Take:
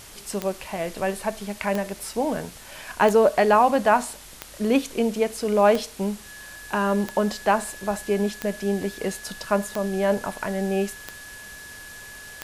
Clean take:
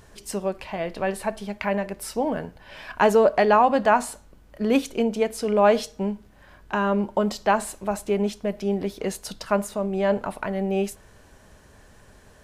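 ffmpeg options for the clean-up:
-af "adeclick=t=4,bandreject=f=1700:w=30,afwtdn=0.0071"

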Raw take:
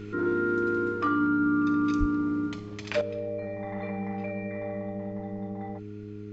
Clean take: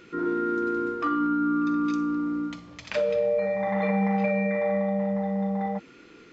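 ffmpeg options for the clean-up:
-filter_complex "[0:a]bandreject=f=103.8:t=h:w=4,bandreject=f=207.6:t=h:w=4,bandreject=f=311.4:t=h:w=4,bandreject=f=415.2:t=h:w=4,asplit=3[s0][s1][s2];[s0]afade=t=out:st=1.99:d=0.02[s3];[s1]highpass=f=140:w=0.5412,highpass=f=140:w=1.3066,afade=t=in:st=1.99:d=0.02,afade=t=out:st=2.11:d=0.02[s4];[s2]afade=t=in:st=2.11:d=0.02[s5];[s3][s4][s5]amix=inputs=3:normalize=0,agate=range=0.0891:threshold=0.0251,asetnsamples=n=441:p=0,asendcmd='3.01 volume volume 10dB',volume=1"

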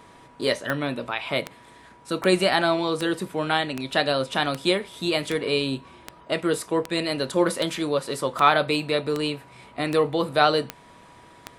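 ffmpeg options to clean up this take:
-af "adeclick=t=4,bandreject=f=970:w=30"

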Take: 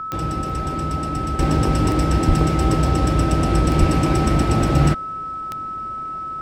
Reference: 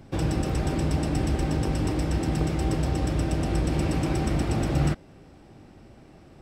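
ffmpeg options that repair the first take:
-filter_complex "[0:a]adeclick=t=4,bandreject=f=1300:w=30,asplit=3[s0][s1][s2];[s0]afade=t=out:st=2.27:d=0.02[s3];[s1]highpass=f=140:w=0.5412,highpass=f=140:w=1.3066,afade=t=in:st=2.27:d=0.02,afade=t=out:st=2.39:d=0.02[s4];[s2]afade=t=in:st=2.39:d=0.02[s5];[s3][s4][s5]amix=inputs=3:normalize=0,asplit=3[s6][s7][s8];[s6]afade=t=out:st=3.79:d=0.02[s9];[s7]highpass=f=140:w=0.5412,highpass=f=140:w=1.3066,afade=t=in:st=3.79:d=0.02,afade=t=out:st=3.91:d=0.02[s10];[s8]afade=t=in:st=3.91:d=0.02[s11];[s9][s10][s11]amix=inputs=3:normalize=0,asetnsamples=n=441:p=0,asendcmd='1.39 volume volume -7.5dB',volume=1"

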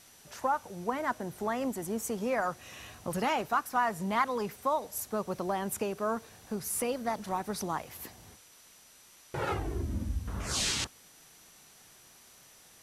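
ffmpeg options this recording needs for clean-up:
-af "bandreject=f=5900:w=30,afftdn=nr=21:nf=-57"

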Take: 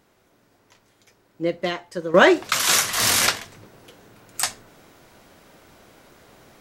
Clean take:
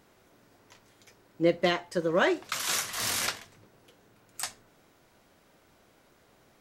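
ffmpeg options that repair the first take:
-af "asetnsamples=n=441:p=0,asendcmd='2.14 volume volume -11dB',volume=1"

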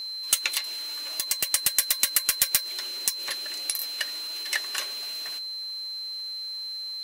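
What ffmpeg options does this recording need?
-af "bandreject=f=4100:w=30"

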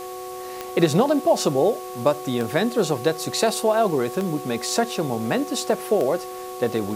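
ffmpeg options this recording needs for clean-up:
-af "adeclick=t=4,bandreject=f=369.5:t=h:w=4,bandreject=f=739:t=h:w=4,bandreject=f=1108.5:t=h:w=4,bandreject=f=500:w=30,afwtdn=0.0071"

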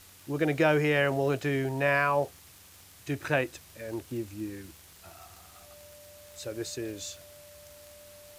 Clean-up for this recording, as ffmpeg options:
-af "adeclick=t=4,bandreject=f=92.4:t=h:w=4,bandreject=f=184.8:t=h:w=4,bandreject=f=277.2:t=h:w=4,bandreject=f=369.6:t=h:w=4,bandreject=f=590:w=30,afwtdn=0.0022"

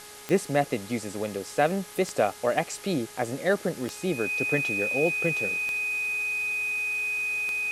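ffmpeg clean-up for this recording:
-af "adeclick=t=4,bandreject=f=417.1:t=h:w=4,bandreject=f=834.2:t=h:w=4,bandreject=f=1251.3:t=h:w=4,bandreject=f=1668.4:t=h:w=4,bandreject=f=2085.5:t=h:w=4,bandreject=f=2500:w=30,afwtdn=0.0063"

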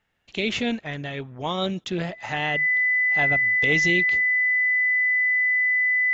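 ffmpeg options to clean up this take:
-af "bandreject=f=2000:w=30"

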